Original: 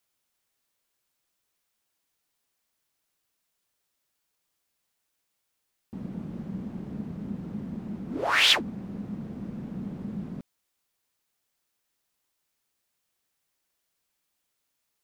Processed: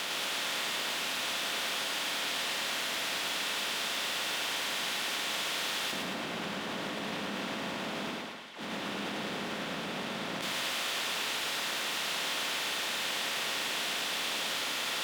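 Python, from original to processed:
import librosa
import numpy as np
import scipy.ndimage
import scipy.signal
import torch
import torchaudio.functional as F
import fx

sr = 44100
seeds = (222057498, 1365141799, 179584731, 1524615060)

y = fx.bin_compress(x, sr, power=0.4)
y = fx.highpass(y, sr, hz=330.0, slope=6)
y = fx.over_compress(y, sr, threshold_db=-38.0, ratio=-1.0)
y = fx.echo_feedback(y, sr, ms=107, feedback_pct=52, wet_db=-3.5)
y = y * librosa.db_to_amplitude(1.0)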